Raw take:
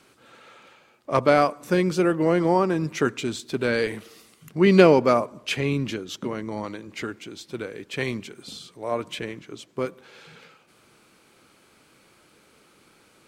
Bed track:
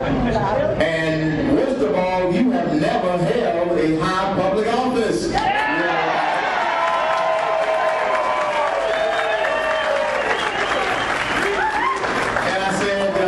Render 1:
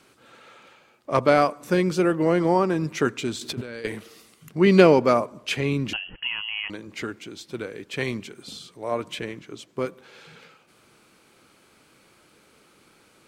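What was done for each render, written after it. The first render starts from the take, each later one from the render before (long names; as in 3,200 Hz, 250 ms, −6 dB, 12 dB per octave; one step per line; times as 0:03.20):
0:03.41–0:03.85: compressor whose output falls as the input rises −34 dBFS
0:05.93–0:06.70: voice inversion scrambler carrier 3,100 Hz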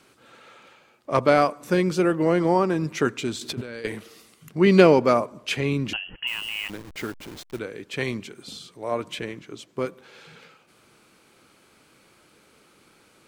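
0:06.27–0:07.59: hold until the input has moved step −37 dBFS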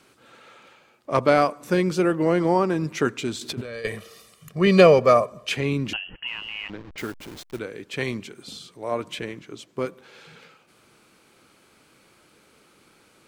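0:03.65–0:05.49: comb filter 1.7 ms, depth 69%
0:06.17–0:06.98: high-frequency loss of the air 200 metres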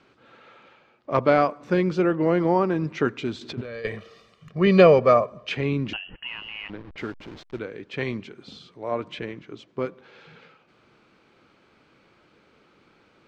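high-frequency loss of the air 190 metres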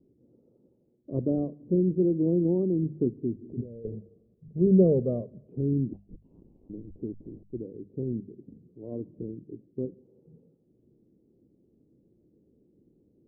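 inverse Chebyshev low-pass filter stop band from 1,700 Hz, stop band 70 dB
mains-hum notches 50/100/150/200 Hz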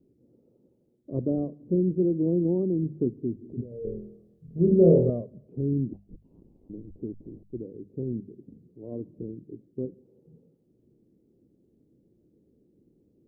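0:03.69–0:05.10: flutter between parallel walls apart 4.1 metres, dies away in 0.56 s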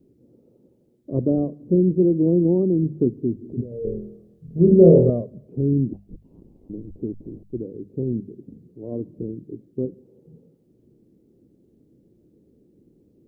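level +6.5 dB
brickwall limiter −2 dBFS, peak gain reduction 1.5 dB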